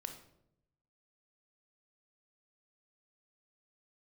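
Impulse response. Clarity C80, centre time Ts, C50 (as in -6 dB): 11.5 dB, 16 ms, 8.0 dB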